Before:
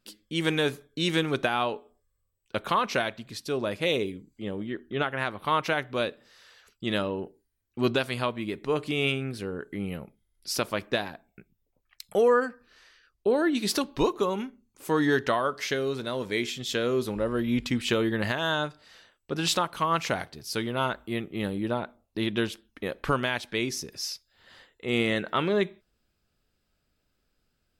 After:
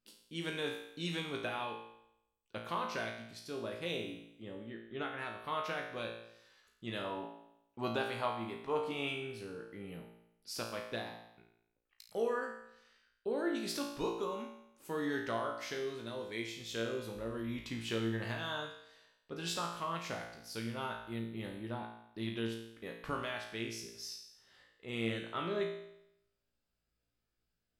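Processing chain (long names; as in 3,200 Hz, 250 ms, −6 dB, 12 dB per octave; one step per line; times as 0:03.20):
0:07.04–0:09.08: parametric band 860 Hz +10 dB 1.1 octaves
tuned comb filter 57 Hz, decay 0.79 s, harmonics all, mix 90%
level −1 dB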